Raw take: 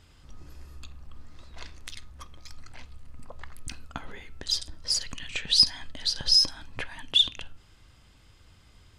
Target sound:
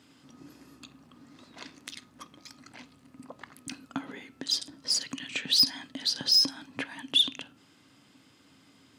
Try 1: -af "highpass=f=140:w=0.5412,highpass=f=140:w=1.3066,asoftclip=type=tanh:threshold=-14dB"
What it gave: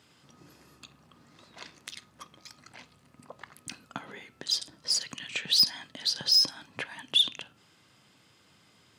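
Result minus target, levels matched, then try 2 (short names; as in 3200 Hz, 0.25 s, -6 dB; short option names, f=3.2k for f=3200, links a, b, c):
250 Hz band -9.5 dB
-af "highpass=f=140:w=0.5412,highpass=f=140:w=1.3066,equalizer=f=270:w=4.3:g=14,asoftclip=type=tanh:threshold=-14dB"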